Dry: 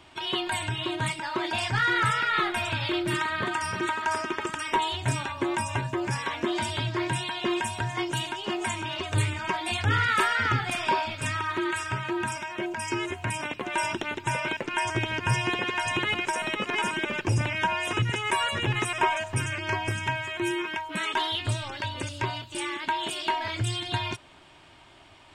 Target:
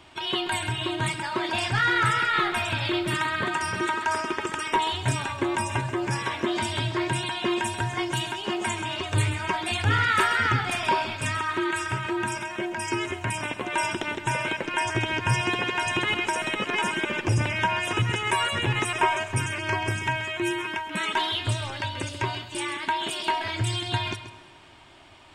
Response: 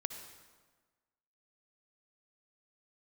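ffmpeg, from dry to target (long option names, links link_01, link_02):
-filter_complex "[0:a]asplit=2[link_01][link_02];[1:a]atrim=start_sample=2205,adelay=133[link_03];[link_02][link_03]afir=irnorm=-1:irlink=0,volume=-11dB[link_04];[link_01][link_04]amix=inputs=2:normalize=0,volume=1.5dB"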